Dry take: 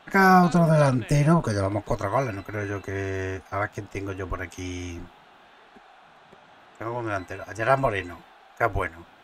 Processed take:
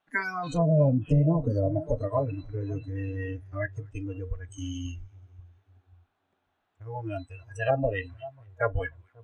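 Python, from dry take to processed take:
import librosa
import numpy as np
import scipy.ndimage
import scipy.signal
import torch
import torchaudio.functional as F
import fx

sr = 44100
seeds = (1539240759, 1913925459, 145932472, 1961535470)

y = fx.echo_split(x, sr, split_hz=1200.0, low_ms=538, high_ms=235, feedback_pct=52, wet_db=-13.5)
y = fx.noise_reduce_blind(y, sr, reduce_db=26)
y = fx.env_lowpass_down(y, sr, base_hz=600.0, full_db=-18.5)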